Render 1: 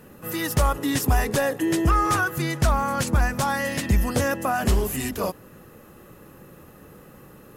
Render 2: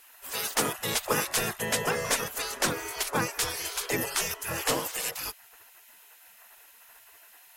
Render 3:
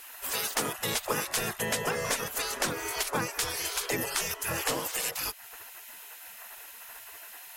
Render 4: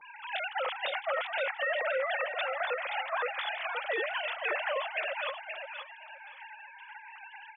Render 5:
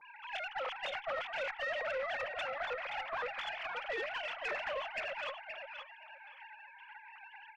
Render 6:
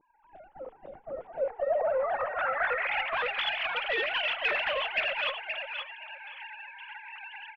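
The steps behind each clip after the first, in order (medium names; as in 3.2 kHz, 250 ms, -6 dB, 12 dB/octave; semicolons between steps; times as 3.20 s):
spectral gate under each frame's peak -20 dB weak; peaking EQ 460 Hz +7 dB 0.31 oct; trim +4 dB
compression 2.5:1, threshold -40 dBFS, peak gain reduction 12.5 dB; trim +8 dB
formants replaced by sine waves; peak limiter -24 dBFS, peak gain reduction 9.5 dB; on a send: feedback delay 524 ms, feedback 20%, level -6.5 dB
valve stage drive 25 dB, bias 0.35; trim -4 dB
low-pass sweep 320 Hz -> 3.2 kHz, 1.01–3.24 s; frequency-shifting echo 82 ms, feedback 34%, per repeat -76 Hz, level -23.5 dB; trim +6 dB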